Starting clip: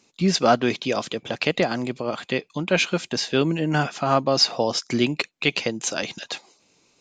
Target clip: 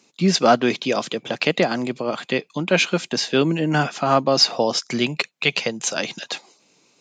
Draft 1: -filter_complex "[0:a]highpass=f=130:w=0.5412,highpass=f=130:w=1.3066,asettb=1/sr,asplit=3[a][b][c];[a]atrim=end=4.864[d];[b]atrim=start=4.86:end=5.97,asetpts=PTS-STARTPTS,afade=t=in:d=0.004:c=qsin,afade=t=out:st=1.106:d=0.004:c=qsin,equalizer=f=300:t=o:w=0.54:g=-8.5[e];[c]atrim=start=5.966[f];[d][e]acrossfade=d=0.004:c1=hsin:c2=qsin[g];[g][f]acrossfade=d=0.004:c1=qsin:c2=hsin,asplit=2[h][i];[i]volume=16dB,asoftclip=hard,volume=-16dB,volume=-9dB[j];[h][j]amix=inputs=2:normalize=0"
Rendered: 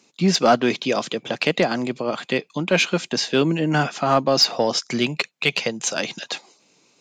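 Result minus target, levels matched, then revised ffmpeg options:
overloaded stage: distortion +21 dB
-filter_complex "[0:a]highpass=f=130:w=0.5412,highpass=f=130:w=1.3066,asettb=1/sr,asplit=3[a][b][c];[a]atrim=end=4.864[d];[b]atrim=start=4.86:end=5.97,asetpts=PTS-STARTPTS,afade=t=in:d=0.004:c=qsin,afade=t=out:st=1.106:d=0.004:c=qsin,equalizer=f=300:t=o:w=0.54:g=-8.5[e];[c]atrim=start=5.966[f];[d][e]acrossfade=d=0.004:c1=hsin:c2=qsin[g];[g][f]acrossfade=d=0.004:c1=qsin:c2=hsin,asplit=2[h][i];[i]volume=7.5dB,asoftclip=hard,volume=-7.5dB,volume=-9dB[j];[h][j]amix=inputs=2:normalize=0"

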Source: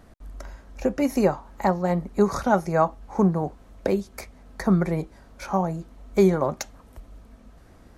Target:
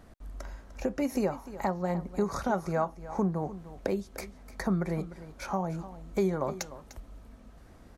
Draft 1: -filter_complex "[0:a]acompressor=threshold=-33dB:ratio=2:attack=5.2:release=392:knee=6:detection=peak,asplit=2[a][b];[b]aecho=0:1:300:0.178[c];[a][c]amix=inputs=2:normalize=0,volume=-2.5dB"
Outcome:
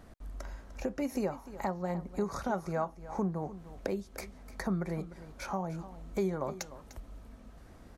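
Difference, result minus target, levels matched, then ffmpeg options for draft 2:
compressor: peak gain reduction +4 dB
-filter_complex "[0:a]acompressor=threshold=-25dB:ratio=2:attack=5.2:release=392:knee=6:detection=peak,asplit=2[a][b];[b]aecho=0:1:300:0.178[c];[a][c]amix=inputs=2:normalize=0,volume=-2.5dB"

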